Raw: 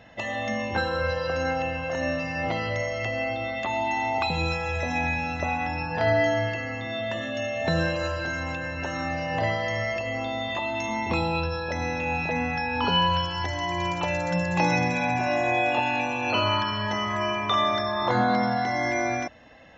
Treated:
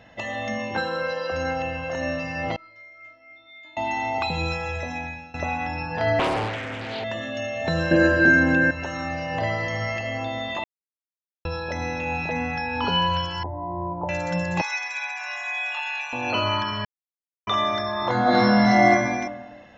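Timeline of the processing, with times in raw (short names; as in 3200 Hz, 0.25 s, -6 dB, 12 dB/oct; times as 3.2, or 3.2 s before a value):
0.58–1.31 HPF 91 Hz -> 210 Hz 24 dB/oct
2.56–3.77 metallic resonator 310 Hz, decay 0.81 s, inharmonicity 0.008
4.64–5.34 fade out, to -19.5 dB
6.19–7.04 Doppler distortion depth 0.81 ms
7.91–8.71 small resonant body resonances 240/340/1600 Hz, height 18 dB, ringing for 30 ms
9.46–9.97 reverb throw, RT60 2.6 s, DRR 2.5 dB
10.64–11.45 mute
13.43–14.09 Chebyshev low-pass 970 Hz, order 4
14.61–16.13 HPF 1100 Hz 24 dB/oct
16.85–17.47 mute
18.22–18.89 reverb throw, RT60 1.3 s, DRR -9 dB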